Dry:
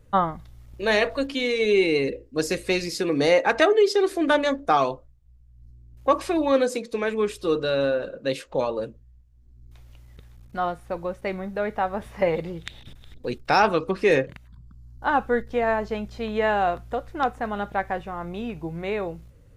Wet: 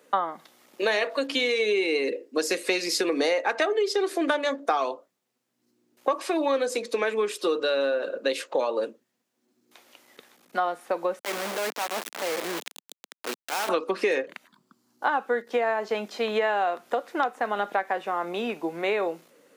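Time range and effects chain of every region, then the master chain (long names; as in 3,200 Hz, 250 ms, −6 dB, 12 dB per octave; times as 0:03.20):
0:11.19–0:13.69: downward compressor 16 to 1, threshold −30 dBFS + transient designer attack −10 dB, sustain 0 dB + bit-depth reduction 6 bits, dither none
whole clip: Bessel high-pass filter 400 Hz, order 8; downward compressor, threshold −30 dBFS; level +8 dB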